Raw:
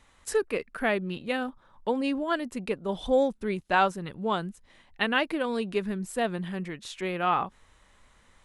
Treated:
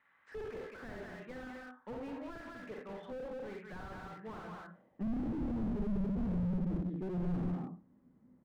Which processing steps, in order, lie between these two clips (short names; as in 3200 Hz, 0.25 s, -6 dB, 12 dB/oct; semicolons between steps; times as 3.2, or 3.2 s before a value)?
LPF 2600 Hz 12 dB/oct; bell 170 Hz +12 dB 2.2 oct; band-pass sweep 1700 Hz -> 250 Hz, 4.35–5.03; echo 0.194 s -6.5 dB; dynamic EQ 450 Hz, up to +7 dB, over -44 dBFS, Q 2; on a send at -1.5 dB: reverb RT60 0.30 s, pre-delay 37 ms; on the sum: slew limiter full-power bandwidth 6.7 Hz; gain -3.5 dB